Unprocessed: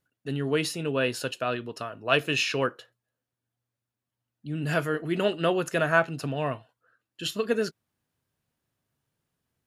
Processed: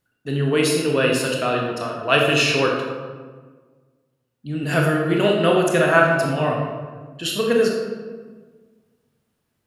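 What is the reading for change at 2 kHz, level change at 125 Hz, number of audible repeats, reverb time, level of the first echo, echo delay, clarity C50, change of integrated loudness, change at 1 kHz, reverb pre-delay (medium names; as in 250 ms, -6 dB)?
+7.5 dB, +8.5 dB, no echo, 1.5 s, no echo, no echo, 2.0 dB, +8.0 dB, +8.5 dB, 23 ms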